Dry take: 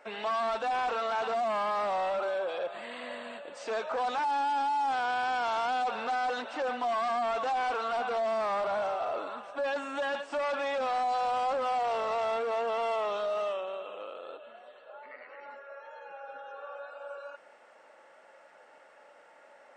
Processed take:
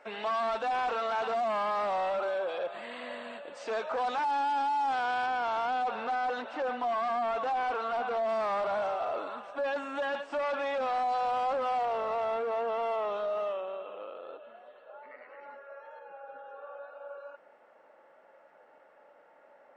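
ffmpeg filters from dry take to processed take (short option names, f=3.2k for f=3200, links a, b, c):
-af "asetnsamples=n=441:p=0,asendcmd='5.26 lowpass f 2400;8.29 lowpass f 5300;9.57 lowpass f 3400;11.85 lowpass f 1700;15.99 lowpass f 1000',lowpass=f=5.8k:p=1"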